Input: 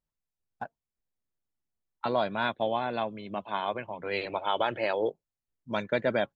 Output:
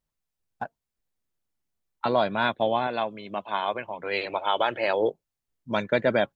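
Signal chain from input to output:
0:02.87–0:04.88: low-shelf EQ 270 Hz −8.5 dB
level +4.5 dB

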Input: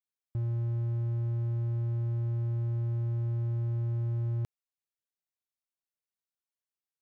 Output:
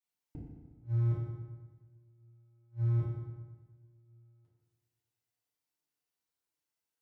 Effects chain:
flanger 0.53 Hz, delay 5.2 ms, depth 8.2 ms, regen +45%
gate with flip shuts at −32 dBFS, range −38 dB
feedback delay network reverb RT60 1.4 s, low-frequency decay 1.1×, high-frequency decay 0.75×, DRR −8 dB

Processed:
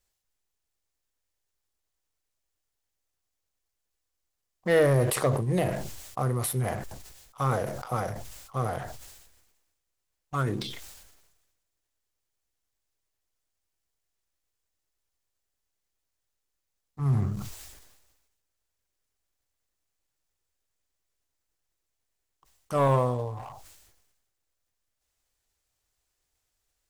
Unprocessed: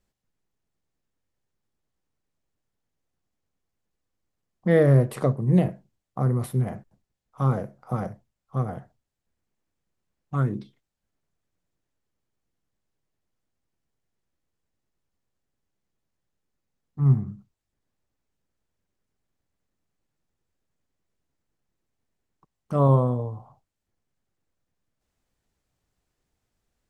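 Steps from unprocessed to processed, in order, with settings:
parametric band 190 Hz −12.5 dB 1.5 octaves
leveller curve on the samples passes 1
high-shelf EQ 3,200 Hz +10 dB
level that may fall only so fast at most 46 dB per second
level −1.5 dB

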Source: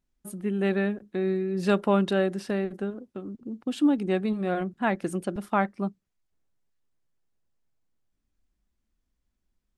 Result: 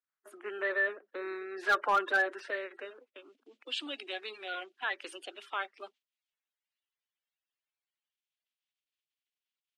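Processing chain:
spectral magnitudes quantised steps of 30 dB
noise gate −47 dBFS, range −10 dB
Butterworth high-pass 280 Hz 48 dB per octave
in parallel at +1 dB: brickwall limiter −21.5 dBFS, peak gain reduction 10 dB
on the sum: band-pass filter sweep 1,400 Hz → 3,000 Hz, 0:02.27–0:03.42
hard clipping −22.5 dBFS, distortion −17 dB
level +2 dB

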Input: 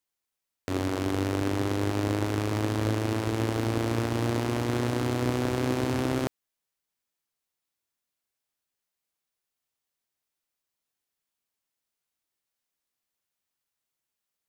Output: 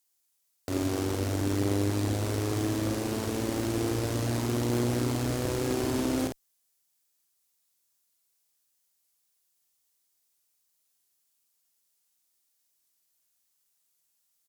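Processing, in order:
bass and treble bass −1 dB, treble +12 dB
asymmetric clip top −24.5 dBFS
double-tracking delay 50 ms −5 dB

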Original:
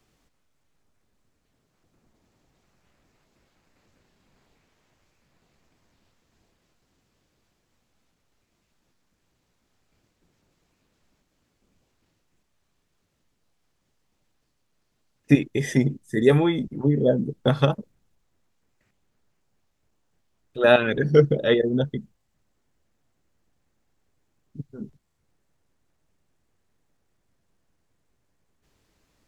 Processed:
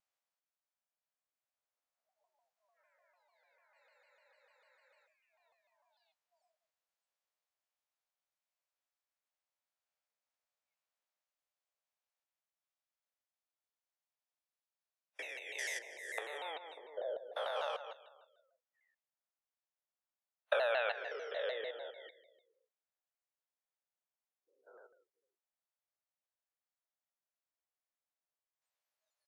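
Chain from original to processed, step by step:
spectrum averaged block by block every 200 ms
single-tap delay 167 ms −18.5 dB
downward compressor 16 to 1, threshold −32 dBFS, peak gain reduction 16.5 dB
Butterworth high-pass 550 Hz 48 dB per octave
delay that swaps between a low-pass and a high-pass 161 ms, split 2,200 Hz, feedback 53%, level −13.5 dB
noise reduction from a noise print of the clip's start 25 dB
frozen spectrum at 0:03.81, 1.25 s
pitch modulation by a square or saw wave saw down 6.7 Hz, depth 160 cents
level +5 dB

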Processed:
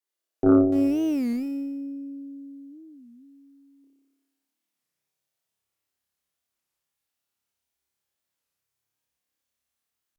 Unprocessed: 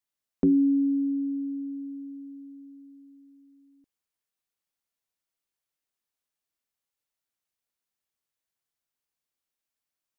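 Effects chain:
0:00.72–0:01.34: converter with a step at zero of −35 dBFS
in parallel at −2 dB: speech leveller within 3 dB 0.5 s
on the sum: high-pass filter sweep 380 Hz → 64 Hz, 0:03.78–0:05.91
on a send: flutter between parallel walls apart 5 metres, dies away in 1.2 s
on the sum: harmonic generator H 4 −15 dB, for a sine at −1 dBFS
wow of a warped record 33 1/3 rpm, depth 250 cents
level −7.5 dB

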